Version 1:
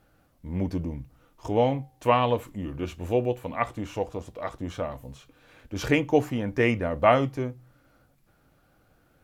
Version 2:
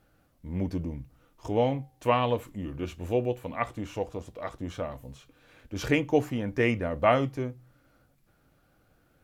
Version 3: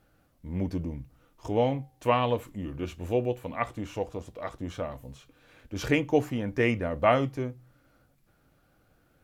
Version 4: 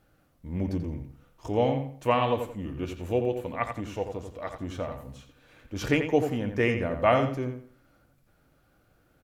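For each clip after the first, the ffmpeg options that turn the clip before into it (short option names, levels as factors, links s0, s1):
-af "equalizer=f=890:w=1.5:g=-2,volume=0.794"
-af anull
-filter_complex "[0:a]asplit=2[s0][s1];[s1]adelay=87,lowpass=f=3800:p=1,volume=0.447,asplit=2[s2][s3];[s3]adelay=87,lowpass=f=3800:p=1,volume=0.3,asplit=2[s4][s5];[s5]adelay=87,lowpass=f=3800:p=1,volume=0.3,asplit=2[s6][s7];[s7]adelay=87,lowpass=f=3800:p=1,volume=0.3[s8];[s0][s2][s4][s6][s8]amix=inputs=5:normalize=0"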